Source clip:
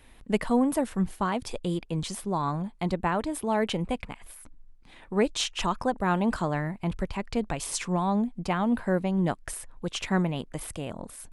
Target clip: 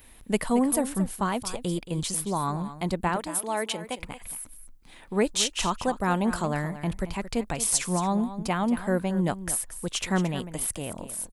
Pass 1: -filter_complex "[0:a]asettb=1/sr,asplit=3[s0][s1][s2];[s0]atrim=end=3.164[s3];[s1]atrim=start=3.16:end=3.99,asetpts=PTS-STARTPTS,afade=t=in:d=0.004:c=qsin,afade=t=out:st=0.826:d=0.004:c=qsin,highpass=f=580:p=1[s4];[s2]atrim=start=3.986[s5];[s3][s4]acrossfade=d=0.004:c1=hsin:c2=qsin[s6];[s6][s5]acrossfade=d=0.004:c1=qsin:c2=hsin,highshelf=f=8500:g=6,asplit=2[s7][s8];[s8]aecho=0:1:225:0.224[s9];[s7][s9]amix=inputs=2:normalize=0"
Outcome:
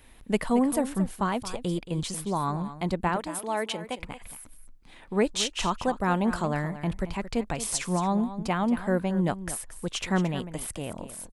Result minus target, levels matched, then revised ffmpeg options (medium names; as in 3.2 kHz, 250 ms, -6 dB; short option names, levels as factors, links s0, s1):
8 kHz band -5.0 dB
-filter_complex "[0:a]asettb=1/sr,asplit=3[s0][s1][s2];[s0]atrim=end=3.164[s3];[s1]atrim=start=3.16:end=3.99,asetpts=PTS-STARTPTS,afade=t=in:d=0.004:c=qsin,afade=t=out:st=0.826:d=0.004:c=qsin,highpass=f=580:p=1[s4];[s2]atrim=start=3.986[s5];[s3][s4]acrossfade=d=0.004:c1=hsin:c2=qsin[s6];[s6][s5]acrossfade=d=0.004:c1=qsin:c2=hsin,highshelf=f=8500:g=18,asplit=2[s7][s8];[s8]aecho=0:1:225:0.224[s9];[s7][s9]amix=inputs=2:normalize=0"